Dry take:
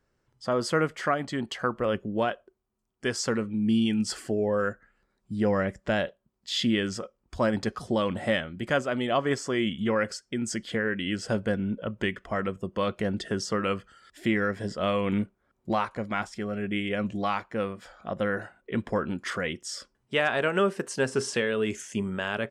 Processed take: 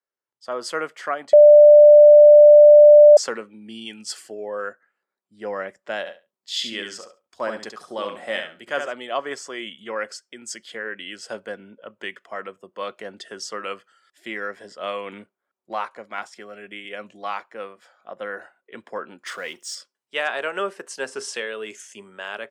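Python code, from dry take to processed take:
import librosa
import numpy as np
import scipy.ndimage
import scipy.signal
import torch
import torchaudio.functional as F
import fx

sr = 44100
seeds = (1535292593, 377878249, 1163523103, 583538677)

y = fx.echo_feedback(x, sr, ms=69, feedback_pct=20, wet_db=-6.0, at=(6.05, 8.92), fade=0.02)
y = fx.band_squash(y, sr, depth_pct=70, at=(16.18, 16.85))
y = fx.law_mismatch(y, sr, coded='mu', at=(19.26, 19.75))
y = fx.edit(y, sr, fx.bleep(start_s=1.33, length_s=1.84, hz=593.0, db=-7.0), tone=tone)
y = scipy.signal.sosfilt(scipy.signal.butter(2, 480.0, 'highpass', fs=sr, output='sos'), y)
y = fx.band_widen(y, sr, depth_pct=40)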